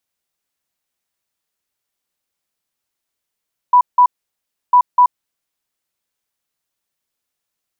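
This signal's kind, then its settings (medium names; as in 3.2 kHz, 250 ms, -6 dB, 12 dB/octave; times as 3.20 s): beep pattern sine 987 Hz, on 0.08 s, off 0.17 s, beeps 2, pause 0.67 s, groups 2, -5.5 dBFS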